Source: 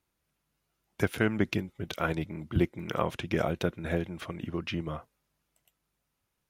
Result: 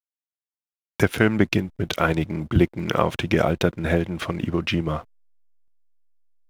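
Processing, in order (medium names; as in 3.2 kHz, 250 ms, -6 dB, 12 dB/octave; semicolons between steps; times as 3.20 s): in parallel at 0 dB: compression, threshold -33 dBFS, peak gain reduction 13 dB; on the sum: expander -54 dBFS; hysteresis with a dead band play -46.5 dBFS; trim +6 dB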